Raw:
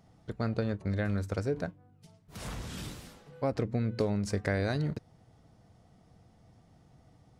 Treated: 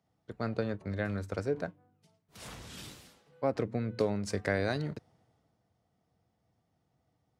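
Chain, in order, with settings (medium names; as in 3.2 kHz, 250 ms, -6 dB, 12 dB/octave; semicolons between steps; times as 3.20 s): high-pass 65 Hz; tone controls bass -5 dB, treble -3 dB; three bands expanded up and down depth 40%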